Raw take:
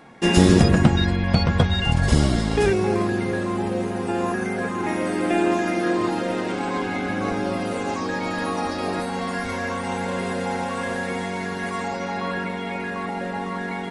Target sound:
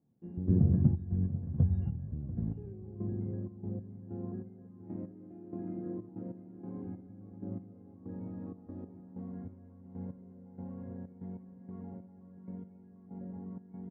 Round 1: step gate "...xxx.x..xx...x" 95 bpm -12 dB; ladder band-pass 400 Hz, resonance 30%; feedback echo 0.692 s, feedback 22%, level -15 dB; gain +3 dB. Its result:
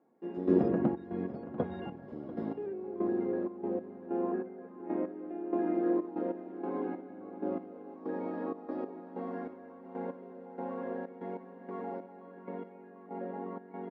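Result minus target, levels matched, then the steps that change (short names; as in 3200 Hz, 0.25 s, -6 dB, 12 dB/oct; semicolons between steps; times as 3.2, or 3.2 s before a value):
125 Hz band -13.5 dB
change: ladder band-pass 120 Hz, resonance 30%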